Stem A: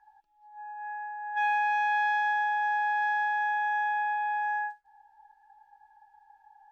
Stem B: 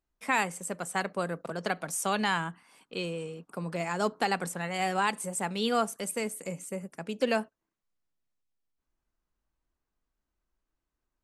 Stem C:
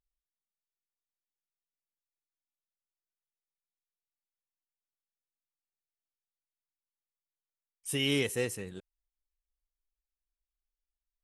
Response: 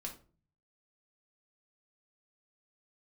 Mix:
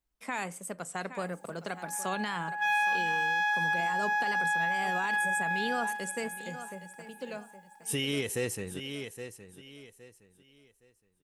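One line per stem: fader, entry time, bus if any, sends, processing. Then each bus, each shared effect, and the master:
−0.5 dB, 1.25 s, no send, echo send −13.5 dB, spectral tilt +5 dB per octave
−4.0 dB, 0.00 s, send −18 dB, echo send −15 dB, tape wow and flutter 72 cents; automatic ducking −18 dB, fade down 1.60 s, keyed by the third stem
+3.0 dB, 0.00 s, no send, echo send −13 dB, no processing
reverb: on, RT60 0.40 s, pre-delay 4 ms
echo: repeating echo 816 ms, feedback 27%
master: brickwall limiter −21.5 dBFS, peak gain reduction 7.5 dB

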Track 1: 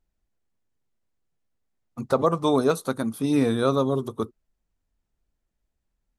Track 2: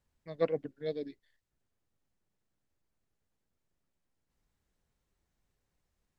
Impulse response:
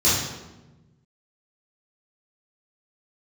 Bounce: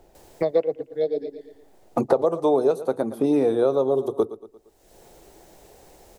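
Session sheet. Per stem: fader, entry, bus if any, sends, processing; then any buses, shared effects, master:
−8.0 dB, 0.00 s, no send, echo send −17 dB, no processing
−5.5 dB, 0.15 s, no send, echo send −19 dB, high-shelf EQ 3,500 Hz +11.5 dB; automatic ducking −17 dB, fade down 1.50 s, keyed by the first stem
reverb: not used
echo: repeating echo 115 ms, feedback 29%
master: flat-topped bell 530 Hz +13 dB; multiband upward and downward compressor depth 100%

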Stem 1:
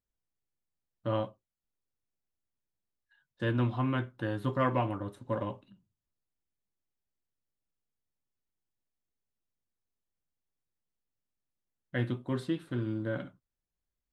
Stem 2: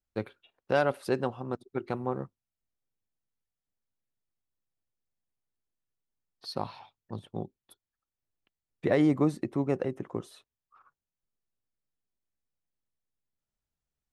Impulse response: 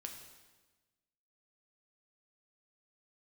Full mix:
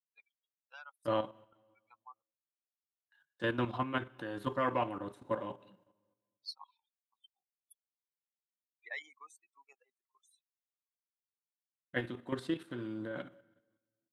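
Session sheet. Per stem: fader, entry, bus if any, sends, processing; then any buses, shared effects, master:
+2.0 dB, 0.00 s, send −10 dB, low-shelf EQ 180 Hz −11.5 dB; noise gate with hold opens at −60 dBFS
+2.5 dB, 0.00 s, no send, spectral dynamics exaggerated over time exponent 3; high-pass filter 1,100 Hz 24 dB per octave; automatic ducking −13 dB, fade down 1.10 s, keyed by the first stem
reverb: on, RT60 1.2 s, pre-delay 3 ms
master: high-pass filter 120 Hz; output level in coarse steps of 10 dB

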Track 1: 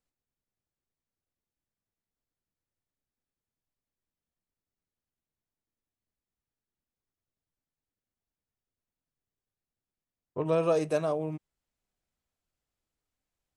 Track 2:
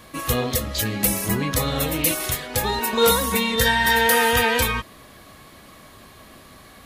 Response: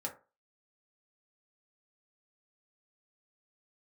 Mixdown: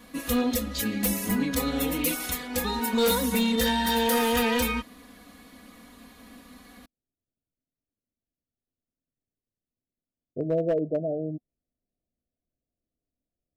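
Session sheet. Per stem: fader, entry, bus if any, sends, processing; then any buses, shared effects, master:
+0.5 dB, 0.00 s, no send, Chebyshev low-pass filter 730 Hz, order 10
−8.5 dB, 0.00 s, no send, comb filter 4.1 ms, depth 91%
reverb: not used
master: parametric band 250 Hz +8 dB 0.55 octaves; gain into a clipping stage and back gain 19 dB

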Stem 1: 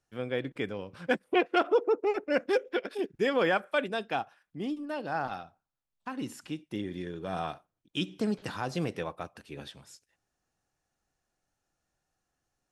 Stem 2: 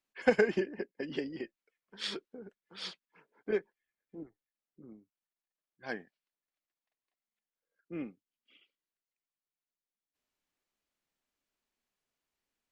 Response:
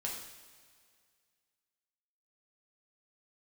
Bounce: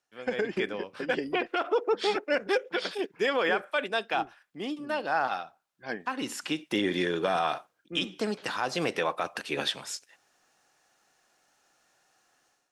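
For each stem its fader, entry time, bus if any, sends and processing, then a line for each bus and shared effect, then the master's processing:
+2.0 dB, 0.00 s, no send, automatic gain control gain up to 14 dB; meter weighting curve A; automatic ducking −9 dB, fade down 0.25 s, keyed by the second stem
−7.5 dB, 0.00 s, no send, automatic gain control gain up to 11 dB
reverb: not used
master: brickwall limiter −16.5 dBFS, peak gain reduction 10 dB

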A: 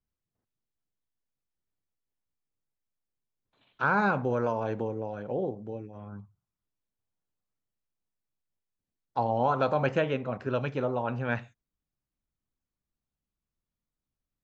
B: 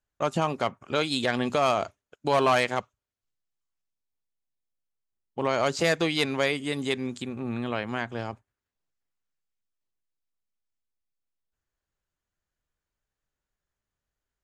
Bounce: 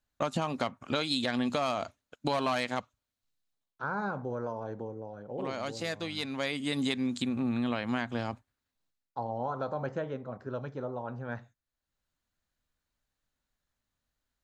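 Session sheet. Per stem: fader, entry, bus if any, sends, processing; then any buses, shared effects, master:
−7.0 dB, 0.00 s, no send, noise gate with hold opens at −49 dBFS; parametric band 2,600 Hz −14 dB 0.57 octaves
+2.0 dB, 0.00 s, no send, thirty-one-band graphic EQ 250 Hz +6 dB, 400 Hz −6 dB, 4,000 Hz +6 dB; automatic ducking −13 dB, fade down 0.30 s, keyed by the first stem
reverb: not used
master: downward compressor 6 to 1, threshold −27 dBFS, peak gain reduction 11 dB

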